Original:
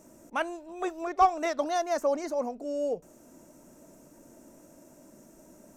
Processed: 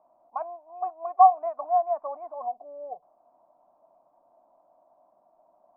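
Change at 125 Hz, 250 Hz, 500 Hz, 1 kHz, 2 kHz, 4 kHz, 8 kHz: n/a, under -20 dB, -2.0 dB, +6.0 dB, under -20 dB, under -35 dB, under -35 dB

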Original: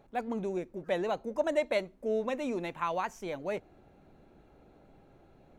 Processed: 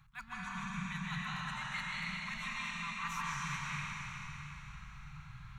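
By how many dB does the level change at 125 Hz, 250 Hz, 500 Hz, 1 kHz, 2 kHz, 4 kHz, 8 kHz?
+5.0, -8.0, -36.0, -4.5, +4.0, +3.5, +5.5 dB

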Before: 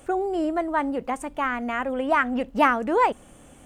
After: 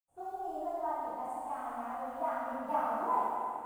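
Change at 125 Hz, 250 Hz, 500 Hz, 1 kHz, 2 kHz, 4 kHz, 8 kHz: n/a, -18.5 dB, -12.5 dB, -8.5 dB, -21.5 dB, under -20 dB, under -10 dB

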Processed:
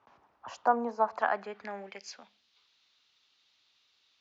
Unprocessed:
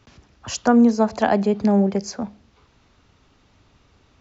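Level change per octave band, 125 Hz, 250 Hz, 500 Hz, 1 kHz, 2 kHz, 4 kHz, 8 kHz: under -30 dB, -25.0 dB, -13.0 dB, -5.0 dB, -6.0 dB, -14.5 dB, n/a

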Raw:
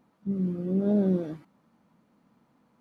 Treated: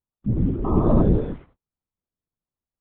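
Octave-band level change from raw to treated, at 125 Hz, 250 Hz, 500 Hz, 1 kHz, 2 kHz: +9.0 dB, +3.5 dB, +5.0 dB, +17.0 dB, n/a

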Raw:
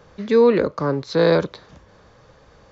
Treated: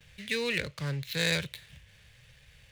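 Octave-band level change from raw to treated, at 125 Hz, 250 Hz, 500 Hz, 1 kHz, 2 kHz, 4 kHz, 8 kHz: -7.5 dB, -16.0 dB, -20.0 dB, -19.0 dB, -1.5 dB, +1.0 dB, n/a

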